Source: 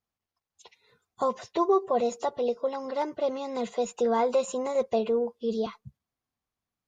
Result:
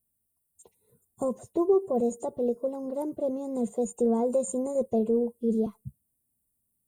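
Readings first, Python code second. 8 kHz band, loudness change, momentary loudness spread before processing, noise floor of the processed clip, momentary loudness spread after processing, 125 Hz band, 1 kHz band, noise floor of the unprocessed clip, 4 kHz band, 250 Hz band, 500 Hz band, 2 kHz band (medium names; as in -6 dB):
+2.0 dB, 0.0 dB, 7 LU, -78 dBFS, 8 LU, no reading, -9.0 dB, under -85 dBFS, under -20 dB, +5.0 dB, -0.5 dB, under -20 dB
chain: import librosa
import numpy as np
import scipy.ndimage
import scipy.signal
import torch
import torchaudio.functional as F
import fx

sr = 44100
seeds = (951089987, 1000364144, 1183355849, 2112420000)

y = fx.curve_eq(x, sr, hz=(240.0, 570.0, 1800.0, 5600.0, 8600.0), db=(0, -8, -29, -25, 13))
y = y * librosa.db_to_amplitude(6.0)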